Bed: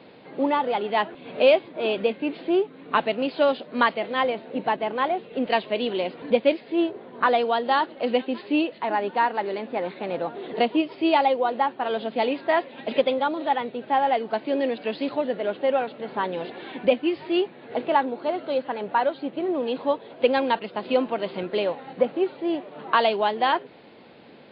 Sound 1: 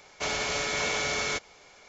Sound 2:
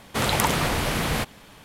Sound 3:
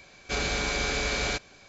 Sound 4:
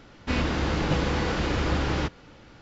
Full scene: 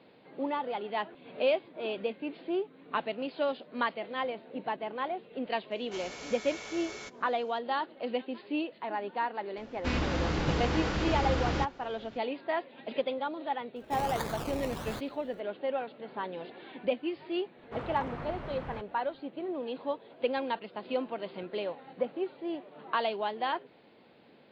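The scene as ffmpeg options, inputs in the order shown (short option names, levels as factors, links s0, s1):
-filter_complex "[2:a]asplit=2[s0][s1];[0:a]volume=0.316[s2];[s0]acrusher=samples=22:mix=1:aa=0.000001:lfo=1:lforange=13.2:lforate=1.5[s3];[s1]lowpass=1500[s4];[1:a]atrim=end=1.88,asetpts=PTS-STARTPTS,volume=0.188,afade=t=in:d=0.004:c=hsin,afade=t=out:st=1.876:d=0.004:c=hsin,adelay=5710[s5];[4:a]atrim=end=2.61,asetpts=PTS-STARTPTS,volume=0.596,afade=t=in:d=0.004:c=hsin,afade=t=out:st=2.606:d=0.004:c=hsin,adelay=9570[s6];[s3]atrim=end=1.64,asetpts=PTS-STARTPTS,volume=0.211,afade=t=in:d=0.004:c=hsin,afade=t=out:st=1.636:d=0.004:c=hsin,adelay=13760[s7];[s4]atrim=end=1.64,asetpts=PTS-STARTPTS,volume=0.178,afade=t=in:d=0.004:c=hsin,afade=t=out:st=1.636:d=0.004:c=hsin,adelay=17570[s8];[s2][s5][s6][s7][s8]amix=inputs=5:normalize=0"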